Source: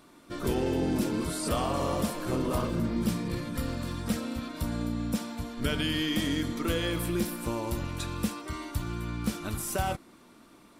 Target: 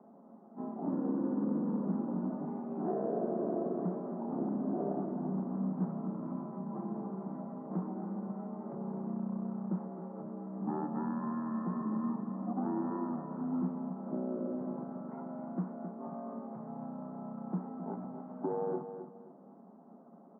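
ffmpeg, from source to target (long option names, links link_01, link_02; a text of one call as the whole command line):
ffmpeg -i in.wav -filter_complex "[0:a]asplit=2[link_01][link_02];[link_02]acompressor=threshold=-41dB:ratio=12,volume=0dB[link_03];[link_01][link_03]amix=inputs=2:normalize=0,acrusher=bits=3:mode=log:mix=0:aa=0.000001,highpass=frequency=210:width_type=q:width=0.5412,highpass=frequency=210:width_type=q:width=1.307,lowpass=frequency=2000:width_type=q:width=0.5176,lowpass=frequency=2000:width_type=q:width=0.7071,lowpass=frequency=2000:width_type=q:width=1.932,afreqshift=130,aecho=1:1:140|280|420:0.335|0.0938|0.0263,asetrate=23329,aresample=44100,volume=-5.5dB" out.wav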